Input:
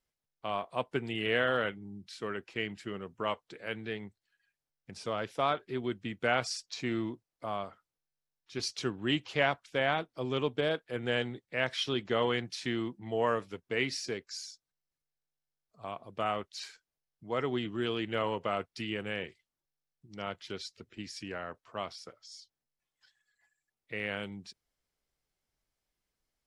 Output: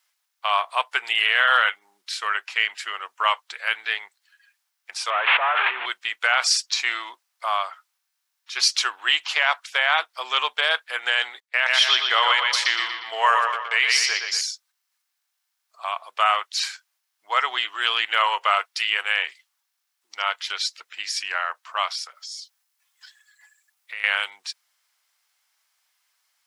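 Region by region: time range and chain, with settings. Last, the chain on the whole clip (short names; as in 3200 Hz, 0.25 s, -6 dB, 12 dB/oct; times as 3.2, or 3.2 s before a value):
5.1–5.86 delta modulation 16 kbps, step -43 dBFS + HPF 230 Hz + fast leveller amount 100%
11.4–14.41 gate -47 dBFS, range -17 dB + analogue delay 0.119 s, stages 4096, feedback 49%, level -5.5 dB
22.06–24.04 high shelf 6200 Hz +5 dB + compressor 2:1, threshold -54 dBFS
whole clip: HPF 930 Hz 24 dB/oct; maximiser +23.5 dB; gain -6 dB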